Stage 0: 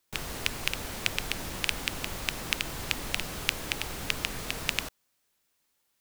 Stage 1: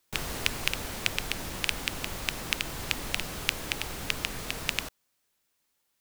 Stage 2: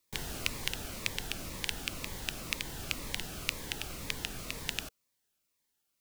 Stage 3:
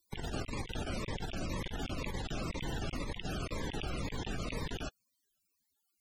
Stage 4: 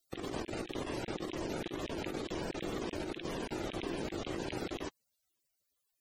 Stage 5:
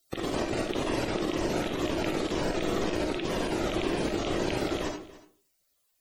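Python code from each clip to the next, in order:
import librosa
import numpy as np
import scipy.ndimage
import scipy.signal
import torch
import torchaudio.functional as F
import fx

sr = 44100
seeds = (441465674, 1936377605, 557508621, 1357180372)

y1 = fx.rider(x, sr, range_db=10, speed_s=2.0)
y2 = fx.notch_cascade(y1, sr, direction='falling', hz=2.0)
y2 = y2 * librosa.db_to_amplitude(-4.0)
y3 = fx.spec_topn(y2, sr, count=64)
y3 = fx.over_compress(y3, sr, threshold_db=-43.0, ratio=-0.5)
y3 = y3 * librosa.db_to_amplitude(5.5)
y4 = y3 * np.sin(2.0 * np.pi * 340.0 * np.arange(len(y3)) / sr)
y4 = y4 * librosa.db_to_amplitude(1.5)
y5 = y4 + 10.0 ** (-18.5 / 20.0) * np.pad(y4, (int(287 * sr / 1000.0), 0))[:len(y4)]
y5 = fx.rev_freeverb(y5, sr, rt60_s=0.41, hf_ratio=0.45, predelay_ms=15, drr_db=2.5)
y5 = y5 * librosa.db_to_amplitude(7.5)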